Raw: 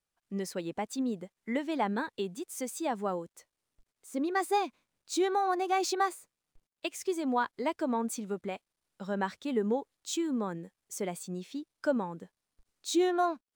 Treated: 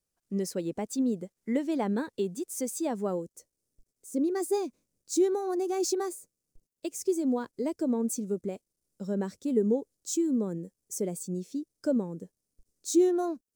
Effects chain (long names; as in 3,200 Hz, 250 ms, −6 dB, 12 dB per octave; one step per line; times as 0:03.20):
flat-topped bell 1,700 Hz −9.5 dB 2.8 octaves, from 0:03.20 −16 dB
level +4.5 dB